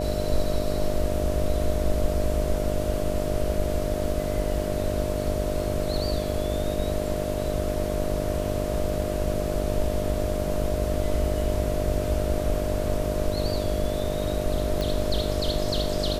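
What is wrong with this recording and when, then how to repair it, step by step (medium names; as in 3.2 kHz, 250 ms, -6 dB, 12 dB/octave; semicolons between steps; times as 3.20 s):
buzz 50 Hz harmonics 14 -30 dBFS
whine 610 Hz -30 dBFS
14.81 s: pop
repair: de-click; de-hum 50 Hz, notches 14; band-stop 610 Hz, Q 30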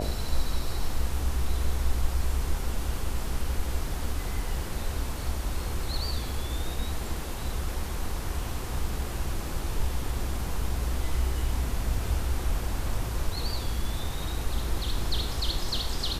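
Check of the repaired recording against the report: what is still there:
nothing left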